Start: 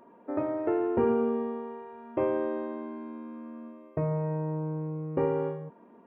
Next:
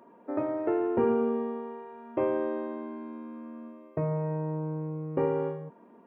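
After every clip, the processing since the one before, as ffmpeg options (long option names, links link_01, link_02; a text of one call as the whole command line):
ffmpeg -i in.wav -af "highpass=100" out.wav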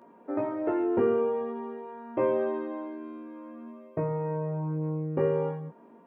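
ffmpeg -i in.wav -af "flanger=delay=17:depth=2.8:speed=0.48,volume=4dB" out.wav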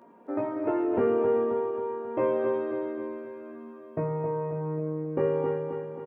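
ffmpeg -i in.wav -af "aecho=1:1:268|536|804|1072|1340|1608|1876:0.501|0.266|0.141|0.0746|0.0395|0.021|0.0111" out.wav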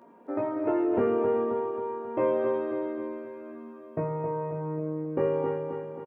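ffmpeg -i in.wav -filter_complex "[0:a]asplit=2[link_01][link_02];[link_02]adelay=29,volume=-14dB[link_03];[link_01][link_03]amix=inputs=2:normalize=0" out.wav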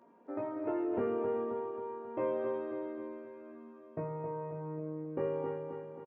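ffmpeg -i in.wav -af "aresample=16000,aresample=44100,volume=-8dB" out.wav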